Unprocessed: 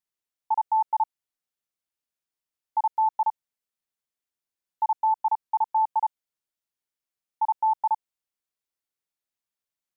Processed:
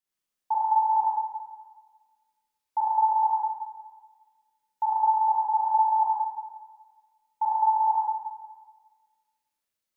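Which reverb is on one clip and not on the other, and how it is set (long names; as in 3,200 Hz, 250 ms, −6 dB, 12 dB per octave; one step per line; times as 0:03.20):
four-comb reverb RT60 1.4 s, combs from 30 ms, DRR −5.5 dB
level −2 dB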